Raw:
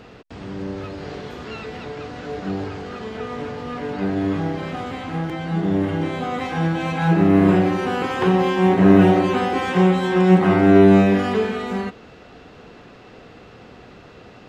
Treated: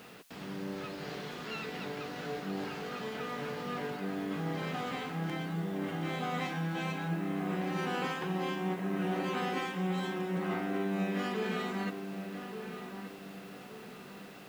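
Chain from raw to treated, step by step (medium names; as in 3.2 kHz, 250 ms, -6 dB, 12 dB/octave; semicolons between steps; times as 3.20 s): resonant low shelf 120 Hz -7.5 dB, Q 3; reverse; compression 5:1, threshold -22 dBFS, peak gain reduction 15.5 dB; reverse; added noise white -60 dBFS; tilt shelf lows -4.5 dB, about 860 Hz; on a send: filtered feedback delay 1177 ms, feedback 42%, level -8 dB; on the sum: trim -7.5 dB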